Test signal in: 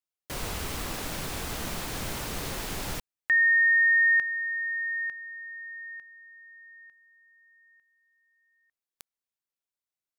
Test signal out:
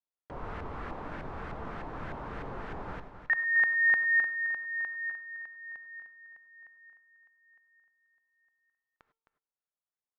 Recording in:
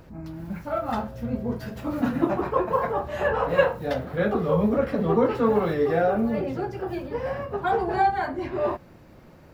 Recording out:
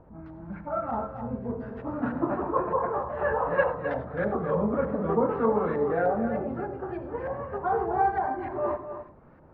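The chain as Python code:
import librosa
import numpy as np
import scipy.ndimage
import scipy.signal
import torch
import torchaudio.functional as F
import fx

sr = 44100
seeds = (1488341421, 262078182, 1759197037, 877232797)

p1 = fx.comb_fb(x, sr, f0_hz=450.0, decay_s=0.43, harmonics='all', damping=0.0, mix_pct=50)
p2 = fx.filter_lfo_lowpass(p1, sr, shape='saw_up', hz=3.3, low_hz=850.0, high_hz=1700.0, q=1.7)
p3 = p2 + fx.echo_single(p2, sr, ms=263, db=-9.5, dry=0)
y = fx.rev_gated(p3, sr, seeds[0], gate_ms=120, shape='rising', drr_db=11.5)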